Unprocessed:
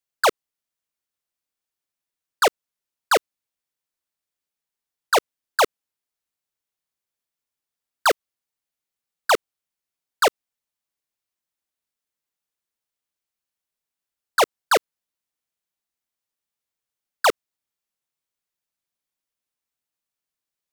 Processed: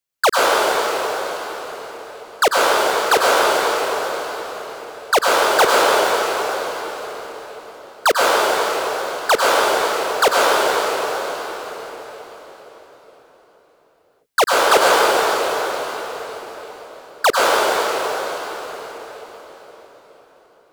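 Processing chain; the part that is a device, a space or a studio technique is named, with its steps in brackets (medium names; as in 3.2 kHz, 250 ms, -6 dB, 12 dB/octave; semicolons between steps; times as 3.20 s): cathedral (reverberation RT60 4.9 s, pre-delay 89 ms, DRR -6 dB); trim +2.5 dB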